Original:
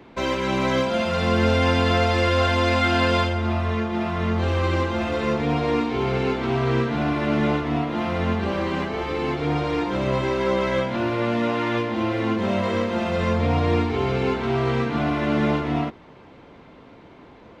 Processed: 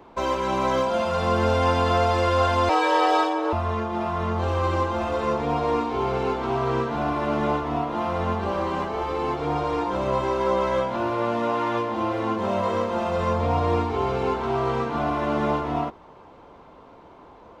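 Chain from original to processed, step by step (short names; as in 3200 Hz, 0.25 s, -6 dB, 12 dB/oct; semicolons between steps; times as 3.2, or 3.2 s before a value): 2.69–3.53 frequency shift +230 Hz; ten-band EQ 125 Hz -6 dB, 250 Hz -5 dB, 1000 Hz +6 dB, 2000 Hz -8 dB, 4000 Hz -4 dB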